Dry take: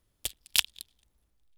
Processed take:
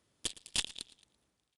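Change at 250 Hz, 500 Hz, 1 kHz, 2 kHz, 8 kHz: can't be measured, +0.5 dB, −6.0 dB, −10.0 dB, −5.5 dB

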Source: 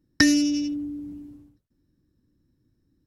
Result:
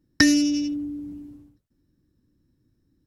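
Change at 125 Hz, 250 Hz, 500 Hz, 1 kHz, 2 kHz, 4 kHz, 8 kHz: +1.0 dB, +1.0 dB, +1.0 dB, can't be measured, +1.0 dB, +1.0 dB, +1.0 dB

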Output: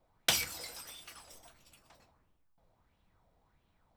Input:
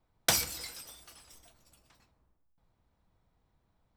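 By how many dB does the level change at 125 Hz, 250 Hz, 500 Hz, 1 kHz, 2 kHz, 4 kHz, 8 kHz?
−5.5, −4.5, −4.5, −4.0, −0.5, 0.0, −4.0 decibels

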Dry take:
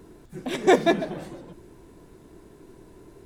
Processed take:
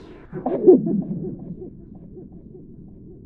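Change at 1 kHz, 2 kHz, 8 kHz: −6.5 dB, below −20 dB, below −30 dB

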